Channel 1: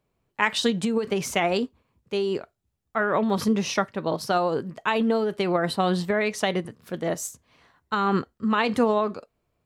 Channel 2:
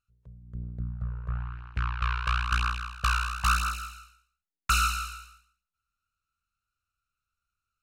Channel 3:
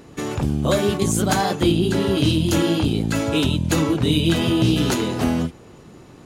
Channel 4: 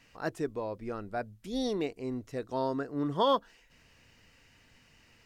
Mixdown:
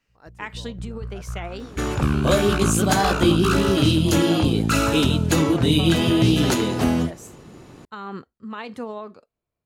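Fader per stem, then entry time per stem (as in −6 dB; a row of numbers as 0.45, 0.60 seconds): −11.0, −0.5, +0.5, −13.0 decibels; 0.00, 0.00, 1.60, 0.00 seconds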